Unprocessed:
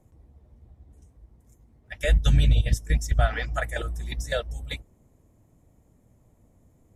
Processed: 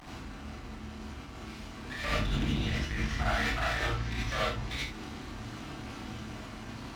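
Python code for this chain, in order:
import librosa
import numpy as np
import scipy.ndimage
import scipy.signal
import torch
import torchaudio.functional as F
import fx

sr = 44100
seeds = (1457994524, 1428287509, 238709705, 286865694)

y = fx.delta_mod(x, sr, bps=32000, step_db=-34.5)
y = 10.0 ** (-20.5 / 20.0) * np.tanh(y / 10.0 ** (-20.5 / 20.0))
y = fx.bass_treble(y, sr, bass_db=-4, treble_db=-11)
y = np.maximum(y, 0.0)
y = scipy.signal.sosfilt(scipy.signal.butter(2, 40.0, 'highpass', fs=sr, output='sos'), y)
y = fx.peak_eq(y, sr, hz=520.0, db=-11.5, octaves=0.61)
y = fx.room_early_taps(y, sr, ms=(28, 69), db=(-5.5, -8.0))
y = fx.rev_gated(y, sr, seeds[0], gate_ms=110, shape='rising', drr_db=-6.5)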